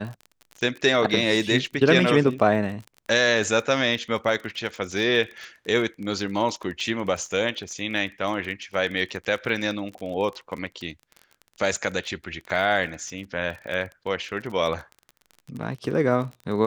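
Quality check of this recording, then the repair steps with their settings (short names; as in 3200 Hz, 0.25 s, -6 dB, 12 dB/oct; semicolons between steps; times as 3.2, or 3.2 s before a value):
crackle 32/s -32 dBFS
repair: de-click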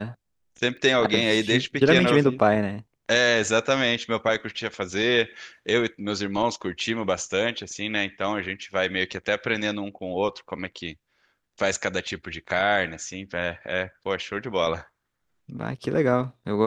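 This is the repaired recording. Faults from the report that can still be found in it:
none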